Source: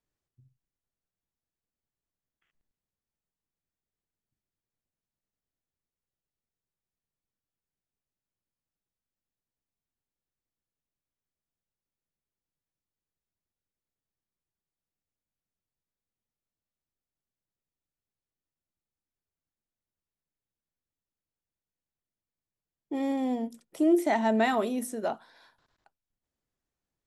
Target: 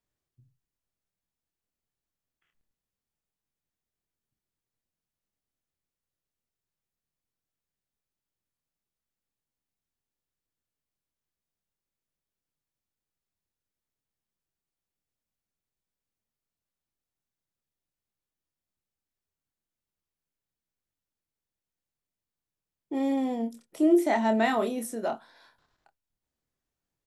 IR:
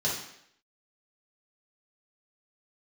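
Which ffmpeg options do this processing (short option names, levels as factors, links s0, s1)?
-filter_complex "[0:a]asplit=2[s0][s1];[s1]adelay=26,volume=0.422[s2];[s0][s2]amix=inputs=2:normalize=0"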